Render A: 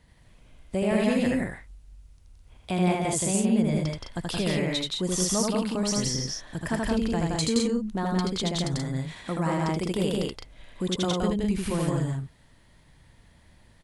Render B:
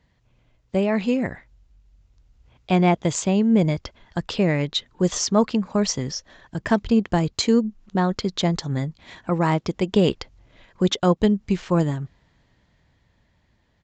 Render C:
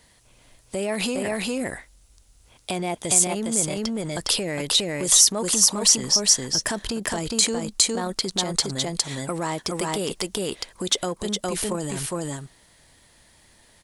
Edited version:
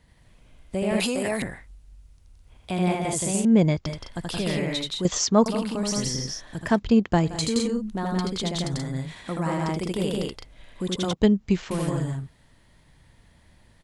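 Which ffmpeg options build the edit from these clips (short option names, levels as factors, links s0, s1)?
-filter_complex "[1:a]asplit=4[s0][s1][s2][s3];[0:a]asplit=6[s4][s5][s6][s7][s8][s9];[s4]atrim=end=1.002[s10];[2:a]atrim=start=0.998:end=1.422[s11];[s5]atrim=start=1.418:end=3.452[s12];[s0]atrim=start=3.448:end=3.862[s13];[s6]atrim=start=3.858:end=5.052[s14];[s1]atrim=start=5.048:end=5.462[s15];[s7]atrim=start=5.458:end=6.8[s16];[s2]atrim=start=6.56:end=7.44[s17];[s8]atrim=start=7.2:end=11.132[s18];[s3]atrim=start=11.128:end=11.712[s19];[s9]atrim=start=11.708[s20];[s10][s11]acrossfade=d=0.004:c1=hsin:c2=hsin[s21];[s21][s12]acrossfade=d=0.004:c1=hsin:c2=hsin[s22];[s22][s13]acrossfade=d=0.004:c1=hsin:c2=hsin[s23];[s23][s14]acrossfade=d=0.004:c1=hsin:c2=hsin[s24];[s24][s15]acrossfade=d=0.004:c1=hsin:c2=hsin[s25];[s25][s16]acrossfade=d=0.004:c1=hsin:c2=hsin[s26];[s26][s17]acrossfade=d=0.24:c1=tri:c2=tri[s27];[s27][s18]acrossfade=d=0.24:c1=tri:c2=tri[s28];[s28][s19]acrossfade=d=0.004:c1=hsin:c2=hsin[s29];[s29][s20]acrossfade=d=0.004:c1=hsin:c2=hsin"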